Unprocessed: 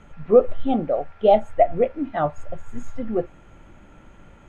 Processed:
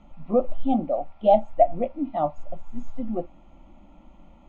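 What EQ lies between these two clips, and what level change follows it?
distance through air 170 m; static phaser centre 430 Hz, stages 6; 0.0 dB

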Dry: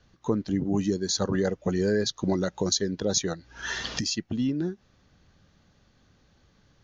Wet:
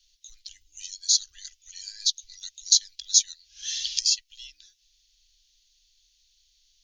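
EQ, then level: inverse Chebyshev band-stop 110–1000 Hz, stop band 60 dB; treble shelf 2.7 kHz +10 dB; 0.0 dB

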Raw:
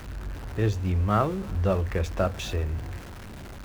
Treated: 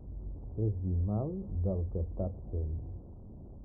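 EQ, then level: Gaussian low-pass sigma 14 samples; -6.0 dB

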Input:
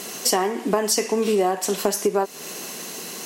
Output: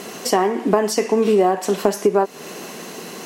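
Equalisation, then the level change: treble shelf 3.3 kHz -12 dB; +5.0 dB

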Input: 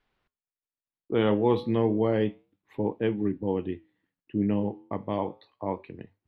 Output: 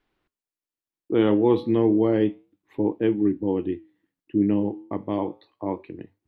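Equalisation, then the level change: peaking EQ 320 Hz +9.5 dB 0.5 oct; 0.0 dB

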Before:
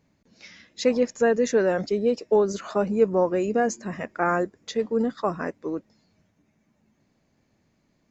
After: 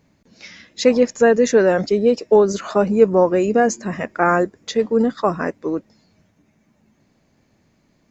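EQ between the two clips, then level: flat; +7.0 dB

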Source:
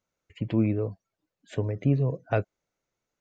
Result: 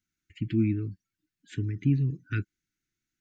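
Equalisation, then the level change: elliptic band-stop 330–1500 Hz, stop band 50 dB; 0.0 dB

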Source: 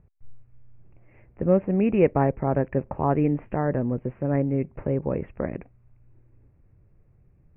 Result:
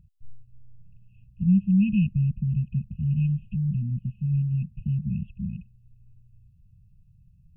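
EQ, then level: dynamic bell 210 Hz, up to +4 dB, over -32 dBFS, Q 1.3; brick-wall FIR band-stop 220–2500 Hz; +2.0 dB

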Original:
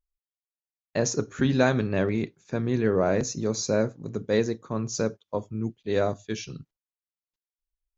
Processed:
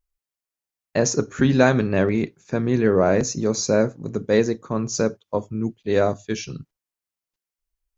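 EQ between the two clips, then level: dynamic bell 110 Hz, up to -4 dB, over -44 dBFS, Q 7.1; peaking EQ 3.6 kHz -3.5 dB 0.47 oct; +5.5 dB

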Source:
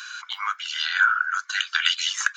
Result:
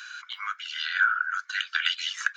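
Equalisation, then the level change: high-pass 1.4 kHz 24 dB/octave; dynamic bell 6.9 kHz, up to -5 dB, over -46 dBFS, Q 2.7; treble shelf 2.2 kHz -10.5 dB; +2.0 dB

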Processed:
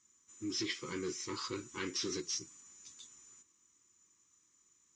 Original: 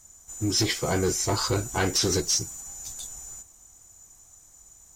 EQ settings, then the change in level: Butterworth band-stop 700 Hz, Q 0.96; cabinet simulation 440–6100 Hz, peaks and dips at 450 Hz -8 dB, 640 Hz -4 dB, 1.5 kHz -9 dB, 4.4 kHz -4 dB; tilt EQ -2 dB/octave; -5.5 dB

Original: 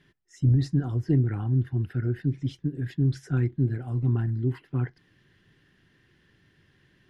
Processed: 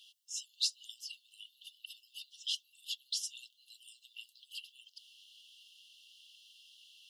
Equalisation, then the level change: brick-wall FIR high-pass 2.7 kHz; +14.0 dB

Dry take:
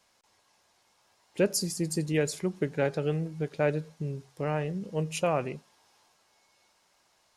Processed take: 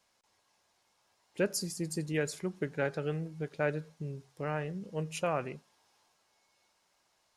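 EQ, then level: dynamic bell 1.5 kHz, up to +6 dB, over -47 dBFS, Q 1.7; -5.5 dB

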